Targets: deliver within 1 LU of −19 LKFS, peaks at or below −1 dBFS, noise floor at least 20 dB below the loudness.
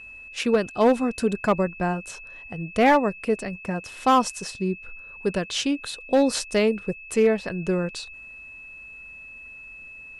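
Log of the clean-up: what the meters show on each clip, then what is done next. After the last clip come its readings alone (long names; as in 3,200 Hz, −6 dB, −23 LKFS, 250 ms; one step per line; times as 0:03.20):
share of clipped samples 0.7%; peaks flattened at −12.0 dBFS; interfering tone 2,600 Hz; level of the tone −40 dBFS; integrated loudness −24.0 LKFS; sample peak −12.0 dBFS; target loudness −19.0 LKFS
→ clipped peaks rebuilt −12 dBFS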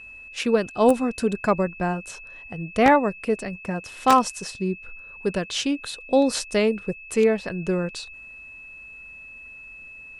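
share of clipped samples 0.0%; interfering tone 2,600 Hz; level of the tone −40 dBFS
→ notch filter 2,600 Hz, Q 30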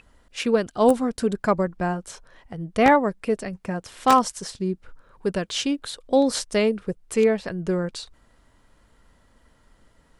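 interfering tone none found; integrated loudness −23.5 LKFS; sample peak −3.0 dBFS; target loudness −19.0 LKFS
→ level +4.5 dB
brickwall limiter −1 dBFS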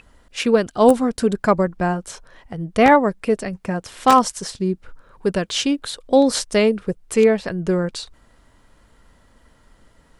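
integrated loudness −19.0 LKFS; sample peak −1.0 dBFS; background noise floor −56 dBFS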